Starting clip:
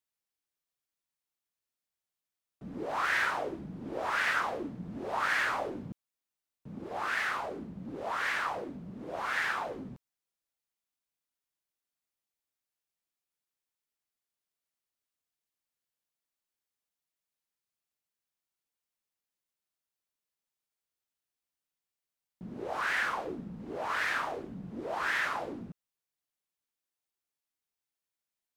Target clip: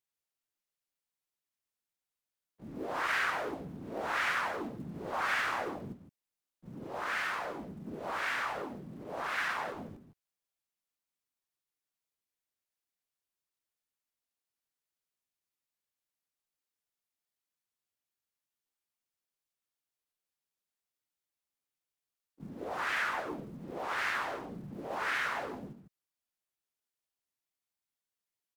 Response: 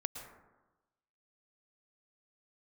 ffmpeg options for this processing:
-filter_complex "[0:a]aecho=1:1:156:0.335,acrusher=bits=8:mode=log:mix=0:aa=0.000001,asplit=4[a][b][c][d];[b]asetrate=37084,aresample=44100,atempo=1.18921,volume=-1dB[e];[c]asetrate=52444,aresample=44100,atempo=0.840896,volume=-3dB[f];[d]asetrate=66075,aresample=44100,atempo=0.66742,volume=-12dB[g];[a][e][f][g]amix=inputs=4:normalize=0,volume=-6dB"

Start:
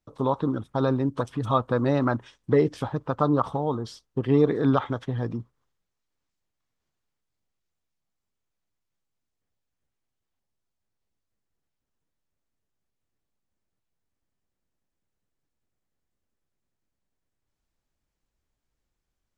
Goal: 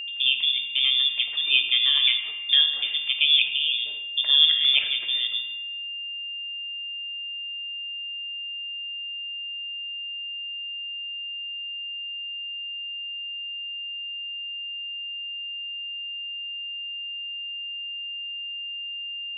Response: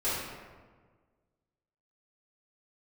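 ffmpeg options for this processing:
-filter_complex "[0:a]lowpass=f=3.1k:t=q:w=0.5098,lowpass=f=3.1k:t=q:w=0.6013,lowpass=f=3.1k:t=q:w=0.9,lowpass=f=3.1k:t=q:w=2.563,afreqshift=-3700,asplit=2[a][b];[1:a]atrim=start_sample=2205[c];[b][c]afir=irnorm=-1:irlink=0,volume=-12.5dB[d];[a][d]amix=inputs=2:normalize=0,aeval=exprs='val(0)+0.0282*sin(2*PI*2800*n/s)':c=same"

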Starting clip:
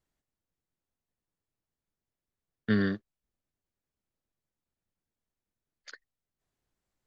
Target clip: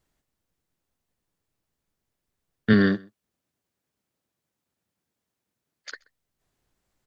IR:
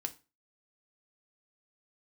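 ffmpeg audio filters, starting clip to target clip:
-filter_complex "[0:a]asettb=1/sr,asplit=3[a][b][c];[a]atrim=end=2.734[d];[b]atrim=start=2.73:end=5.93,asetpts=PTS-STARTPTS,afade=t=in:d=0.004:c=qsin,afade=t=out:st=3.196:d=0.004:c=qsin,highpass=110[e];[c]atrim=start=5.926[f];[d][e]acrossfade=d=0.004:c1=hsin:c2=qsin[g];[g][f]acrossfade=d=0.004:c1=qsin:c2=hsin,asplit=2[h][i];[i]adelay=128.3,volume=-25dB,highshelf=f=4k:g=-2.89[j];[h][j]amix=inputs=2:normalize=0,volume=8.5dB"

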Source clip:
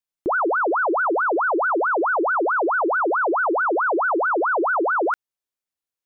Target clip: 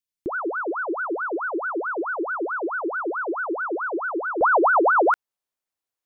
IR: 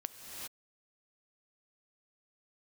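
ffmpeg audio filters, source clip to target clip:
-af "asetnsamples=n=441:p=0,asendcmd='4.41 equalizer g 4.5',equalizer=f=810:w=0.8:g=-11.5"

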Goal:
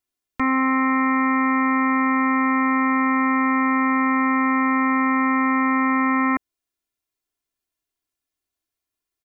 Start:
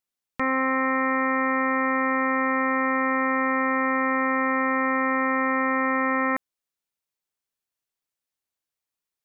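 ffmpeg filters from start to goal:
-filter_complex "[0:a]aecho=1:1:2.9:0.68,acrossover=split=370[a][b];[a]acontrast=55[c];[c][b]amix=inputs=2:normalize=0"

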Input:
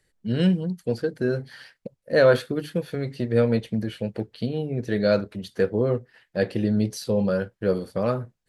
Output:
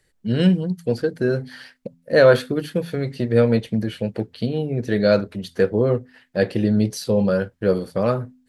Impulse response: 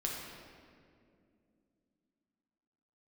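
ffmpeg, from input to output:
-af "bandreject=f=84.57:t=h:w=4,bandreject=f=169.14:t=h:w=4,bandreject=f=253.71:t=h:w=4,volume=4dB"

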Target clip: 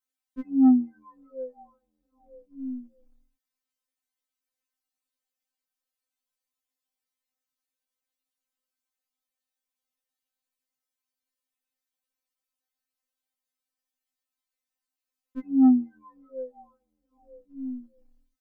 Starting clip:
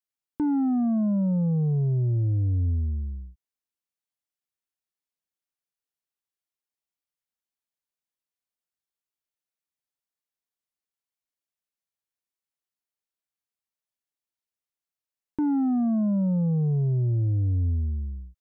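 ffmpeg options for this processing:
-af "acompressor=threshold=-27dB:ratio=6,afftfilt=real='re*3.46*eq(mod(b,12),0)':imag='im*3.46*eq(mod(b,12),0)':win_size=2048:overlap=0.75,volume=4.5dB"

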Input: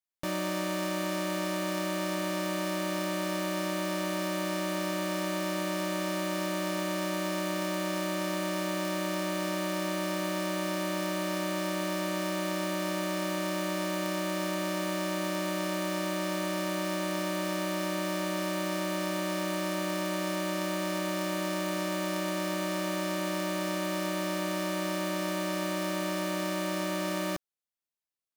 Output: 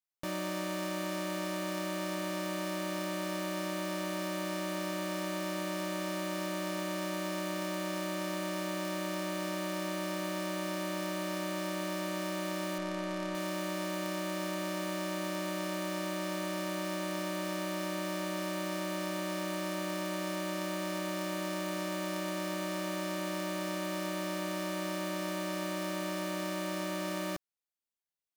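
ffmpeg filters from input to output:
-filter_complex "[0:a]asettb=1/sr,asplit=3[a][b][c];[a]atrim=end=12.784[d];[b]atrim=start=12.78:end=13.35,asetpts=PTS-STARTPTS,afade=t=in:d=0.004:c=qsin,afade=t=out:st=0.566:d=0.004:c=qsin,adynamicsmooth=sensitivity=7.5:basefreq=1.5k[e];[c]atrim=start=13.346[f];[d][e]acrossfade=d=0.004:c1=hsin:c2=qsin[g];[g][f]acrossfade=d=0.004:c1=qsin:c2=hsin,volume=-4dB"

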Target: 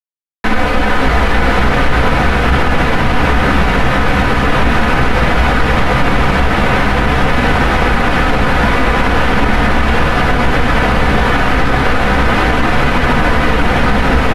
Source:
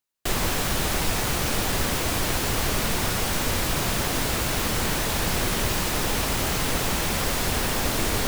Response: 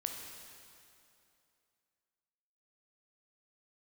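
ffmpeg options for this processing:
-filter_complex "[0:a]lowpass=2.9k,bandreject=f=1.9k:w=10,aecho=1:1:2.3:0.74,acrossover=split=360|1700[a][b][c];[c]acontrast=59[d];[a][b][d]amix=inputs=3:normalize=0,flanger=delay=6.9:depth=1.9:regen=-20:speed=0.67:shape=triangular,acrusher=bits=7:mix=0:aa=0.5,asplit=7[e][f][g][h][i][j][k];[f]adelay=321,afreqshift=-120,volume=-5dB[l];[g]adelay=642,afreqshift=-240,volume=-11.6dB[m];[h]adelay=963,afreqshift=-360,volume=-18.1dB[n];[i]adelay=1284,afreqshift=-480,volume=-24.7dB[o];[j]adelay=1605,afreqshift=-600,volume=-31.2dB[p];[k]adelay=1926,afreqshift=-720,volume=-37.8dB[q];[e][l][m][n][o][p][q]amix=inputs=7:normalize=0,asetrate=25442,aresample=44100,alimiter=level_in=16.5dB:limit=-1dB:release=50:level=0:latency=1,volume=-1dB"

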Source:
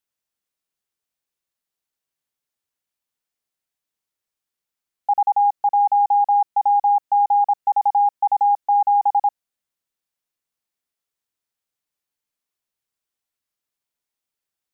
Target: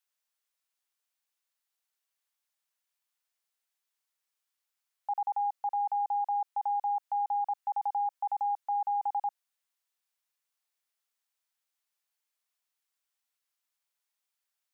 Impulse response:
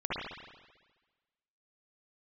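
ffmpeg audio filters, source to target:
-af "highpass=740,alimiter=level_in=2dB:limit=-24dB:level=0:latency=1:release=28,volume=-2dB"

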